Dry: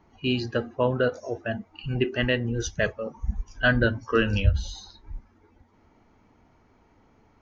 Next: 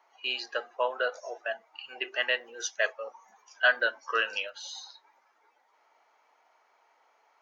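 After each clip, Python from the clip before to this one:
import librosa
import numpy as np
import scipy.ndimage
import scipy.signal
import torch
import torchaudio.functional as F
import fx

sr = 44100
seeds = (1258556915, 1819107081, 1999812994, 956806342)

y = scipy.signal.sosfilt(scipy.signal.butter(4, 620.0, 'highpass', fs=sr, output='sos'), x)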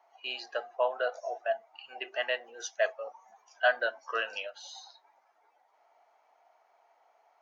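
y = fx.peak_eq(x, sr, hz=700.0, db=12.5, octaves=0.49)
y = y * 10.0 ** (-5.5 / 20.0)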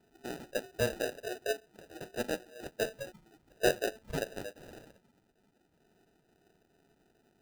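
y = fx.sample_hold(x, sr, seeds[0], rate_hz=1100.0, jitter_pct=0)
y = y * 10.0 ** (-3.0 / 20.0)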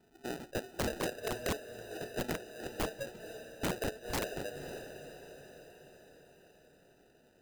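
y = fx.echo_diffused(x, sr, ms=515, feedback_pct=56, wet_db=-13.0)
y = (np.mod(10.0 ** (28.5 / 20.0) * y + 1.0, 2.0) - 1.0) / 10.0 ** (28.5 / 20.0)
y = y * 10.0 ** (1.0 / 20.0)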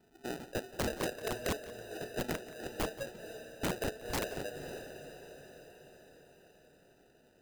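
y = x + 10.0 ** (-18.5 / 20.0) * np.pad(x, (int(176 * sr / 1000.0), 0))[:len(x)]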